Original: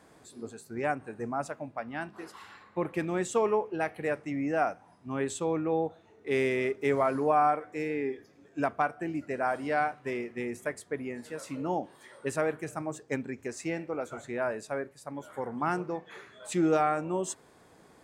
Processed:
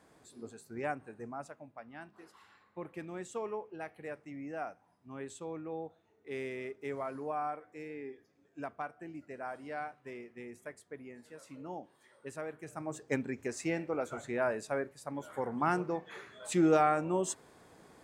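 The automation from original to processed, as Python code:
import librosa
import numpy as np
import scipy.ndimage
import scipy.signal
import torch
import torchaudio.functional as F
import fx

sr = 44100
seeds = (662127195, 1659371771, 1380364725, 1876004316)

y = fx.gain(x, sr, db=fx.line((0.84, -5.5), (1.62, -12.0), (12.52, -12.0), (13.04, -0.5)))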